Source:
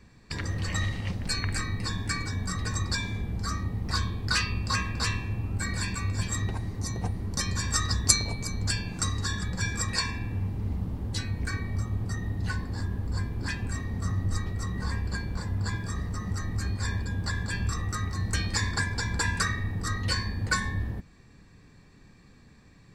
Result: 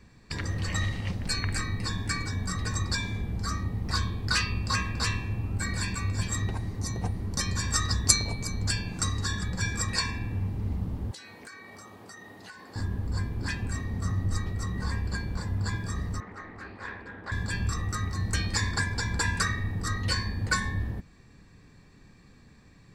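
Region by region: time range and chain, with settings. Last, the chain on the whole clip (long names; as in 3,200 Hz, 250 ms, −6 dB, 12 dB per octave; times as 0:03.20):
0:11.11–0:12.76: high-pass filter 460 Hz + downward compressor, threshold −42 dBFS
0:16.20–0:17.32: three-way crossover with the lows and the highs turned down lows −21 dB, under 290 Hz, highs −23 dB, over 2,700 Hz + highs frequency-modulated by the lows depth 0.19 ms
whole clip: no processing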